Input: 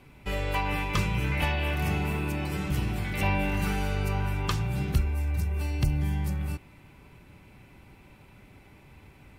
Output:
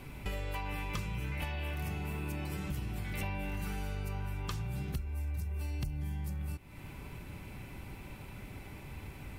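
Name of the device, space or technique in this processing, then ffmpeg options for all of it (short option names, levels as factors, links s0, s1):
ASMR close-microphone chain: -af "lowshelf=f=100:g=5,acompressor=threshold=0.00891:ratio=5,highshelf=f=8100:g=7,volume=1.68"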